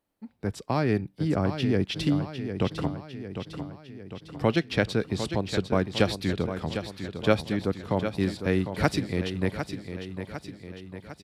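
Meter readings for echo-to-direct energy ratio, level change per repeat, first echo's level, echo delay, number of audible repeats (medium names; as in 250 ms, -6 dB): -7.5 dB, -5.0 dB, -9.0 dB, 753 ms, 6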